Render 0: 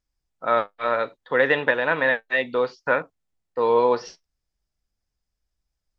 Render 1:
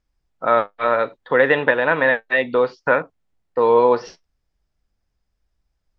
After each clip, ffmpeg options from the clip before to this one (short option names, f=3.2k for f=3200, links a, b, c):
-filter_complex "[0:a]lowpass=f=2.5k:p=1,asplit=2[a][b];[b]acompressor=threshold=-28dB:ratio=6,volume=-2dB[c];[a][c]amix=inputs=2:normalize=0,volume=3dB"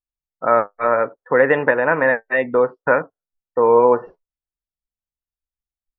-af "lowpass=1.9k,afftdn=nr=26:nf=-41,volume=1.5dB"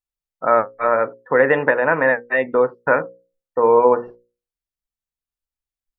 -af "bandreject=f=60:t=h:w=6,bandreject=f=120:t=h:w=6,bandreject=f=180:t=h:w=6,bandreject=f=240:t=h:w=6,bandreject=f=300:t=h:w=6,bandreject=f=360:t=h:w=6,bandreject=f=420:t=h:w=6,bandreject=f=480:t=h:w=6,bandreject=f=540:t=h:w=6"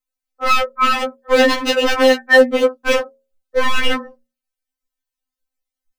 -af "aeval=exprs='0.188*(abs(mod(val(0)/0.188+3,4)-2)-1)':c=same,afftfilt=real='re*3.46*eq(mod(b,12),0)':imag='im*3.46*eq(mod(b,12),0)':win_size=2048:overlap=0.75,volume=7dB"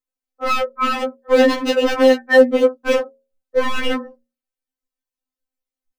-af "equalizer=f=330:t=o:w=2.2:g=8.5,volume=-6dB"